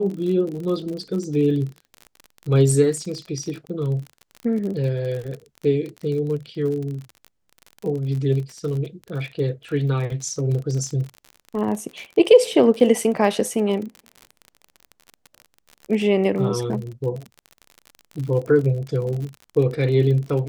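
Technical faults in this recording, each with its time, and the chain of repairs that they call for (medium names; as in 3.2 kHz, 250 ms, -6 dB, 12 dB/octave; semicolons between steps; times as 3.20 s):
crackle 45 per s -29 dBFS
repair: de-click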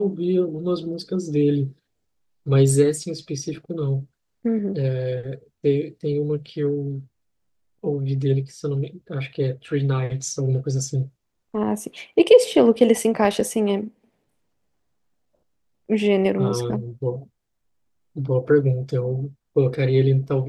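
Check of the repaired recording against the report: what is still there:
nothing left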